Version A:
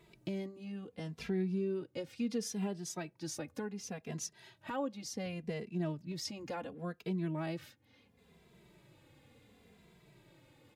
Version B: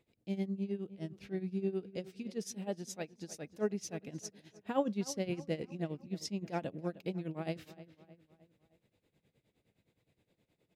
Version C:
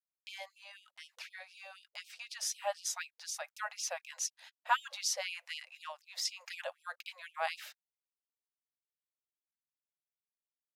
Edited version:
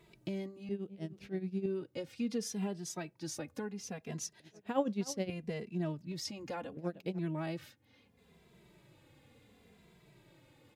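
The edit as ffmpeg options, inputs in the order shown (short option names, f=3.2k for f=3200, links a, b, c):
-filter_complex "[1:a]asplit=3[a][b][c];[0:a]asplit=4[d][e][f][g];[d]atrim=end=0.692[h];[a]atrim=start=0.688:end=1.662[i];[e]atrim=start=1.658:end=4.402[j];[b]atrim=start=4.398:end=5.302[k];[f]atrim=start=5.298:end=6.772[l];[c]atrim=start=6.768:end=7.192[m];[g]atrim=start=7.188[n];[h][i]acrossfade=d=0.004:c1=hsin:c2=hsin[o];[o][j]acrossfade=d=0.004:c1=hsin:c2=hsin[p];[p][k]acrossfade=d=0.004:c1=hsin:c2=hsin[q];[q][l]acrossfade=d=0.004:c1=hsin:c2=hsin[r];[r][m]acrossfade=d=0.004:c1=hsin:c2=hsin[s];[s][n]acrossfade=d=0.004:c1=hsin:c2=hsin"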